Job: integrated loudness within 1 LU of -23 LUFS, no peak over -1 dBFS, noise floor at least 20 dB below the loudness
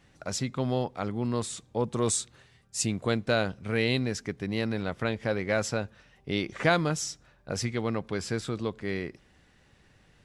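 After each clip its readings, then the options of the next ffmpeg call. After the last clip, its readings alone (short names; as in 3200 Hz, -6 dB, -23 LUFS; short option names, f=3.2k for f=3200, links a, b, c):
loudness -30.0 LUFS; peak -10.0 dBFS; loudness target -23.0 LUFS
-> -af "volume=7dB"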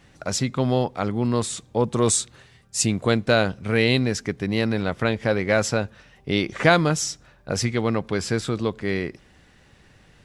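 loudness -23.0 LUFS; peak -3.0 dBFS; noise floor -55 dBFS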